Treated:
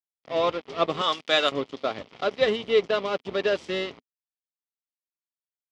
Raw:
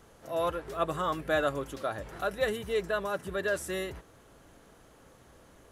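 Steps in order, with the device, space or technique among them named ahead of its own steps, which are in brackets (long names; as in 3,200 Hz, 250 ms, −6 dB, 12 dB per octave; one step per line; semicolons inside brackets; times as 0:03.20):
0:01.01–0:01.52: spectral tilt +4.5 dB per octave
blown loudspeaker (dead-zone distortion −41 dBFS; loudspeaker in its box 130–5,400 Hz, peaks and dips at 250 Hz +6 dB, 430 Hz +4 dB, 1,600 Hz −8 dB, 2,200 Hz +4 dB, 3,200 Hz +7 dB, 4,900 Hz +4 dB)
level +7 dB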